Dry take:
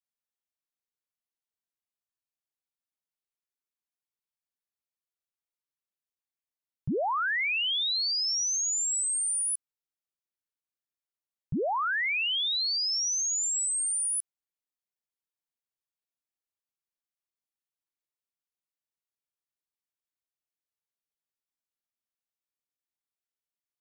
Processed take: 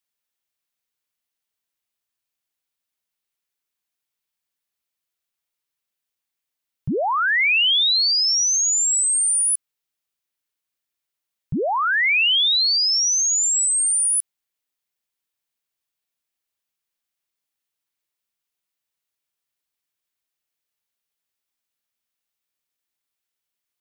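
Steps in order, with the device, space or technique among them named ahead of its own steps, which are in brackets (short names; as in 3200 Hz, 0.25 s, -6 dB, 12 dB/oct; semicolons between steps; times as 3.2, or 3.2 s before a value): presence and air boost (bell 2800 Hz +4.5 dB 1.9 oct; high shelf 9300 Hz +6 dB); gain +6 dB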